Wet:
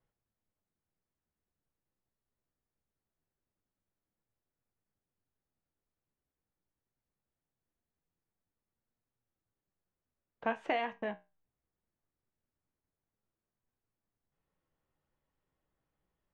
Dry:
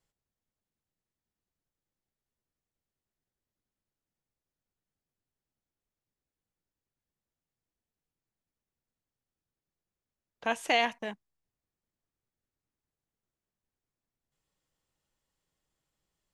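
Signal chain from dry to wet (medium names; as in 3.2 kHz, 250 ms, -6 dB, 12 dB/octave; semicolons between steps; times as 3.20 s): low-pass 1.8 kHz 12 dB/octave; compression, threshold -30 dBFS, peak gain reduction 7 dB; flange 0.22 Hz, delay 8 ms, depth 8.8 ms, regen +65%; trim +5.5 dB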